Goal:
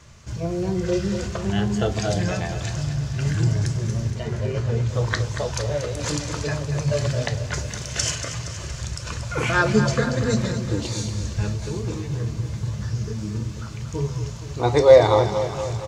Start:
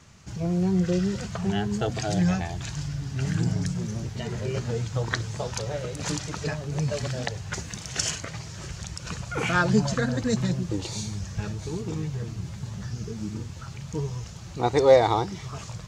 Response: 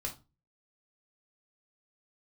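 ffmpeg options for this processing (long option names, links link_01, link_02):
-filter_complex "[0:a]asettb=1/sr,asplit=3[link_01][link_02][link_03];[link_01]atrim=end=4.104[link_04];[link_02]atrim=start=4.1:end=4.89,asetpts=PTS-STARTPTS,afade=type=in:duration=0.004:curve=qsin,afade=type=out:start_time=0.786:duration=0.004:curve=qsin,highshelf=frequency=3700:gain=-8.5[link_05];[link_03]atrim=start=4.886[link_06];[link_04][link_05]acrossfade=duration=0.004:curve1=hsin:curve2=qsin[link_07];[link_07][link_06]acrossfade=duration=0.004:curve1=qsin:curve2=hsin,aecho=1:1:234|468|702|936|1170|1404|1638:0.316|0.183|0.106|0.0617|0.0358|0.0208|0.012,asplit=2[link_08][link_09];[1:a]atrim=start_sample=2205[link_10];[link_09][link_10]afir=irnorm=-1:irlink=0,volume=-2dB[link_11];[link_08][link_11]amix=inputs=2:normalize=0,volume=-1dB"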